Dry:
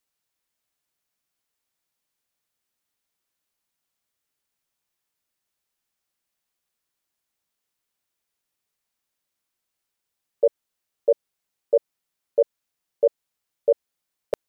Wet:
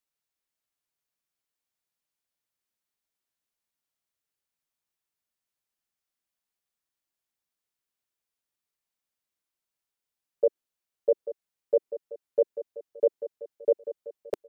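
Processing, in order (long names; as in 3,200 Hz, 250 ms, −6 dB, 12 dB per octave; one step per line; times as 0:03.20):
dynamic equaliser 370 Hz, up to +7 dB, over −33 dBFS, Q 1.6
on a send: repeating echo 840 ms, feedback 52%, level −12.5 dB
on the sum: level −7.5 dB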